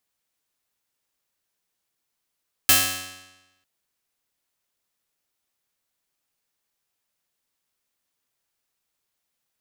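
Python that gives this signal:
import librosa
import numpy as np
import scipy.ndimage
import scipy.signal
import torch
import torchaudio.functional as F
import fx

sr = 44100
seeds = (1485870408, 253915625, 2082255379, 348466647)

y = fx.pluck(sr, length_s=0.95, note=42, decay_s=1.05, pick=0.19, brightness='bright')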